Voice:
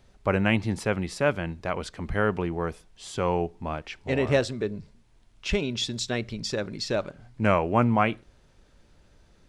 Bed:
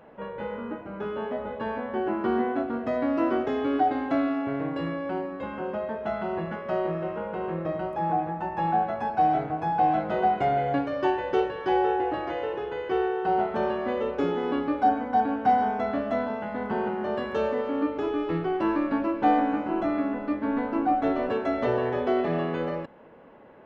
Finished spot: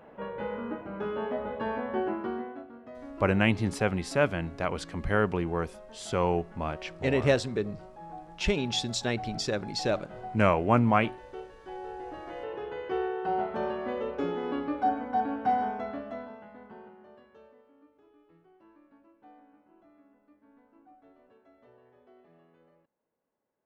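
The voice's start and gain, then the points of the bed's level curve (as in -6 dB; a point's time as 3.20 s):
2.95 s, -1.0 dB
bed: 1.99 s -1 dB
2.71 s -18 dB
11.75 s -18 dB
12.63 s -5 dB
15.64 s -5 dB
17.78 s -34 dB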